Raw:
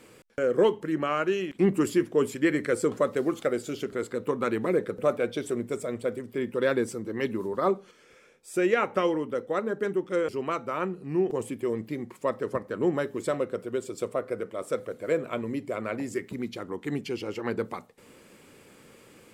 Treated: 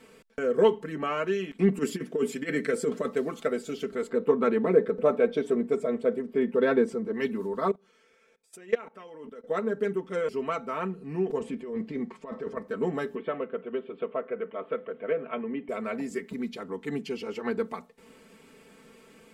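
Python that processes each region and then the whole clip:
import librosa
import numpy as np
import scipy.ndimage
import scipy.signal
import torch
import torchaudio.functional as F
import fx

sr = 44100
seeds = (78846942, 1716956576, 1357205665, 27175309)

y = fx.chain(x, sr, fx.highpass(hz=95.0, slope=12),
    fx.peak_eq(hz=980.0, db=-5.5, octaves=0.62),
    fx.over_compress(threshold_db=-24.0, ratio=-0.5), at=(1.78, 3.08))
y = fx.chain(y, sr, fx.lowpass(hz=3300.0, slope=6),
    fx.peak_eq(hz=450.0, db=5.0, octaves=2.7), at=(4.09, 7.14))
y = fx.chain(y, sr, fx.low_shelf(hz=130.0, db=-10.5),
    fx.level_steps(step_db=21), at=(7.71, 9.44))
y = fx.chain(y, sr, fx.lowpass(hz=6200.0, slope=12),
    fx.high_shelf(hz=4500.0, db=-5.0),
    fx.over_compress(threshold_db=-33.0, ratio=-1.0), at=(11.39, 12.57))
y = fx.chain(y, sr, fx.ellip_lowpass(hz=3100.0, order=4, stop_db=50),
    fx.low_shelf(hz=130.0, db=-10.0),
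    fx.band_squash(depth_pct=40), at=(13.15, 15.69))
y = fx.high_shelf(y, sr, hz=7100.0, db=-6.0)
y = y + 0.84 * np.pad(y, (int(4.5 * sr / 1000.0), 0))[:len(y)]
y = F.gain(torch.from_numpy(y), -3.0).numpy()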